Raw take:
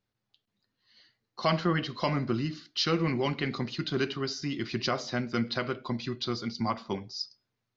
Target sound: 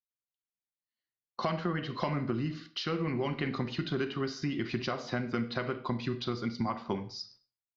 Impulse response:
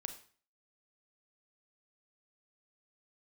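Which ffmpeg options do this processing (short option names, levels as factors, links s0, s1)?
-filter_complex "[0:a]agate=range=0.0178:threshold=0.00316:ratio=16:detection=peak,acompressor=threshold=0.02:ratio=6,asplit=2[s0][s1];[1:a]atrim=start_sample=2205,afade=t=out:st=0.31:d=0.01,atrim=end_sample=14112,lowpass=3200[s2];[s1][s2]afir=irnorm=-1:irlink=0,volume=1.88[s3];[s0][s3]amix=inputs=2:normalize=0,volume=0.794"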